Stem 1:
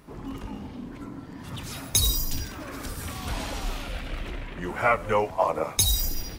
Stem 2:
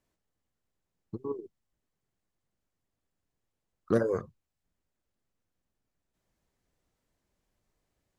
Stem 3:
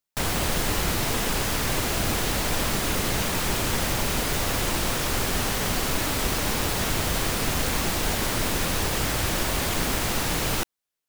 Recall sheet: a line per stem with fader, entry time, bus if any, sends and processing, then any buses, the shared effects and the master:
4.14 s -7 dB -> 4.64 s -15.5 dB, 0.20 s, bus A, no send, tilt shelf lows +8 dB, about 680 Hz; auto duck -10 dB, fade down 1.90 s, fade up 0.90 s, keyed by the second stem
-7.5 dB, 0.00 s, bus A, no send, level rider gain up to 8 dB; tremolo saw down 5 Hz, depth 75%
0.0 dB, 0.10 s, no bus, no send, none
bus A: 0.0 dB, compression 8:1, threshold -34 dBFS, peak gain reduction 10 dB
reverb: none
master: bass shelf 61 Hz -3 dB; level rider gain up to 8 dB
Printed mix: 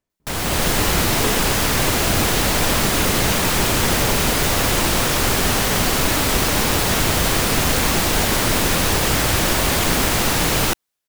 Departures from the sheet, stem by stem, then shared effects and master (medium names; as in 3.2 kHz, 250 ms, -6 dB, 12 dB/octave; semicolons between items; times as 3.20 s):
stem 1 -7.0 dB -> -18.0 dB; stem 2 -7.5 dB -> -1.5 dB